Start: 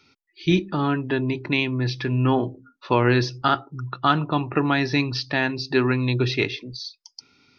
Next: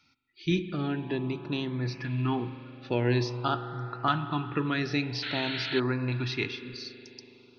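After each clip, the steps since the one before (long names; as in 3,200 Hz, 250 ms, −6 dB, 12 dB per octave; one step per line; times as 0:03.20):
spring reverb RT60 3.9 s, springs 41 ms, chirp 30 ms, DRR 10 dB
auto-filter notch saw up 0.49 Hz 400–3,700 Hz
sound drawn into the spectrogram noise, 0:05.22–0:05.80, 1,300–4,400 Hz −28 dBFS
level −7 dB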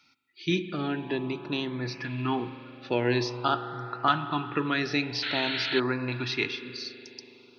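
high-pass filter 290 Hz 6 dB per octave
level +3.5 dB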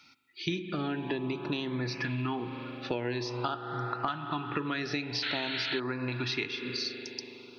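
downward compressor 10 to 1, threshold −34 dBFS, peak gain reduction 17 dB
level +5 dB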